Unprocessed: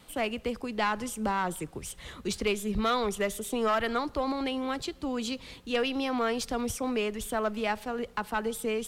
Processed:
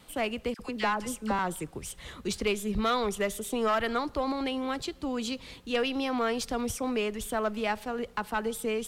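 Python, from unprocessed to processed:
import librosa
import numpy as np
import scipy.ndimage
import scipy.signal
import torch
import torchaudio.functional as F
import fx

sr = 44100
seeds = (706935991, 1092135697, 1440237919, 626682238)

y = fx.dispersion(x, sr, late='lows', ms=54.0, hz=1200.0, at=(0.54, 1.39))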